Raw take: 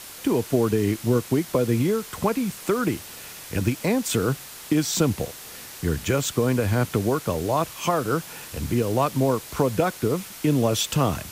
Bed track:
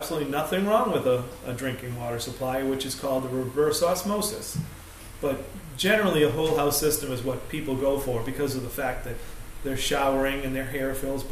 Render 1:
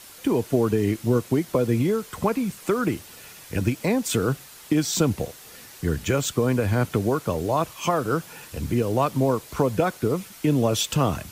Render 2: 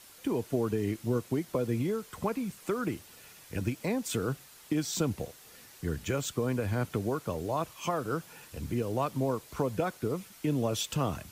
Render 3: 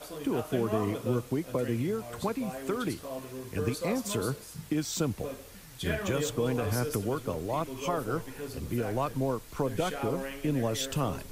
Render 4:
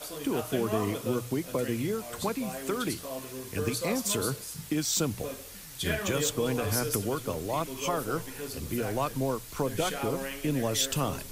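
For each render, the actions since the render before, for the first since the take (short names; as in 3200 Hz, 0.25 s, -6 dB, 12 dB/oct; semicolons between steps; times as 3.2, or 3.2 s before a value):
denoiser 6 dB, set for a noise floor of -41 dBFS
gain -8.5 dB
add bed track -12.5 dB
high shelf 2600 Hz +8 dB; notches 60/120/180 Hz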